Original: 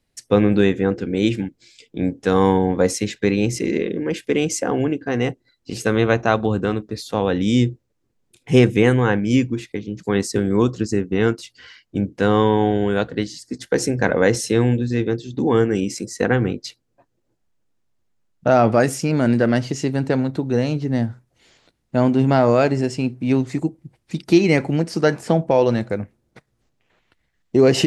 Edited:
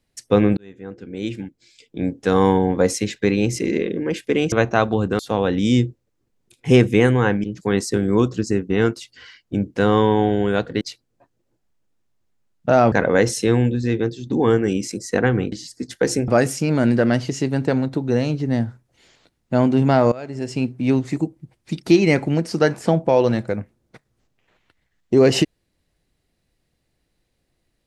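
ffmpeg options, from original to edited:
-filter_complex "[0:a]asplit=10[s0][s1][s2][s3][s4][s5][s6][s7][s8][s9];[s0]atrim=end=0.57,asetpts=PTS-STARTPTS,afade=t=out:st=0.566:d=0.004:c=hsin[s10];[s1]atrim=start=0.57:end=4.522,asetpts=PTS-STARTPTS,afade=t=in:d=1.76[s11];[s2]atrim=start=6.038:end=6.712[s12];[s3]atrim=start=7.018:end=9.272[s13];[s4]atrim=start=9.858:end=13.232[s14];[s5]atrim=start=16.588:end=18.702[s15];[s6]atrim=start=13.988:end=16.592[s16];[s7]atrim=start=13.228:end=13.992[s17];[s8]atrim=start=18.698:end=22.54,asetpts=PTS-STARTPTS,afade=t=out:st=3.838:d=0.004:c=hsin:silence=0.112202[s18];[s9]atrim=start=22.54,asetpts=PTS-STARTPTS,afade=t=in:d=0.45:c=qua:silence=0.112202[s19];[s10][s11]concat=n=2:v=0:a=1[s20];[s20][s12]acrossfade=d=0.004:c1=hsin:c2=hsin[s21];[s21][s13]acrossfade=d=0.004:c1=hsin:c2=hsin[s22];[s22][s14]acrossfade=d=0.004:c1=hsin:c2=hsin[s23];[s23][s15]acrossfade=d=0.004:c1=hsin:c2=hsin[s24];[s24][s16]acrossfade=d=0.004:c1=hsin:c2=hsin[s25];[s25][s17]acrossfade=d=0.004:c1=hsin:c2=hsin[s26];[s18][s19]concat=n=2:v=0:a=1[s27];[s26][s27]acrossfade=d=0.004:c1=hsin:c2=hsin"

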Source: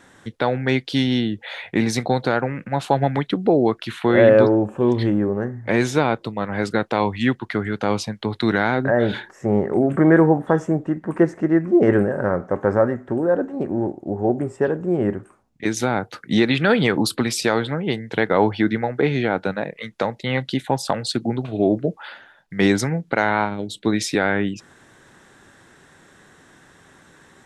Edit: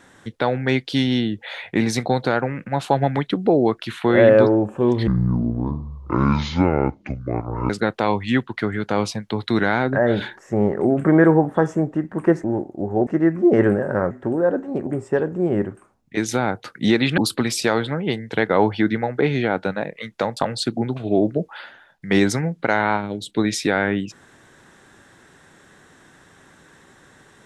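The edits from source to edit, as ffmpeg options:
-filter_complex "[0:a]asplit=9[s0][s1][s2][s3][s4][s5][s6][s7][s8];[s0]atrim=end=5.074[s9];[s1]atrim=start=5.07:end=6.62,asetpts=PTS-STARTPTS,asetrate=26019,aresample=44100[s10];[s2]atrim=start=6.616:end=11.362[s11];[s3]atrim=start=13.718:end=14.352[s12];[s4]atrim=start=11.358:end=12.402[s13];[s5]atrim=start=12.958:end=13.722[s14];[s6]atrim=start=14.348:end=16.662[s15];[s7]atrim=start=16.978:end=20.172[s16];[s8]atrim=start=20.848[s17];[s9][s10]acrossfade=d=0.004:c1=hsin:c2=hsin[s18];[s18][s11]acrossfade=d=0.004:c1=hsin:c2=hsin[s19];[s19][s12]acrossfade=d=0.004:c1=hsin:c2=hsin[s20];[s20][s13]acrossfade=d=0.004:c1=hsin:c2=hsin[s21];[s21][s14]acrossfade=d=0.004:c1=hsin:c2=hsin[s22];[s22][s15]acrossfade=d=0.004:c1=hsin:c2=hsin[s23];[s23][s16]acrossfade=d=0.004:c1=hsin:c2=hsin[s24];[s24][s17]acrossfade=d=0.004:c1=hsin:c2=hsin"

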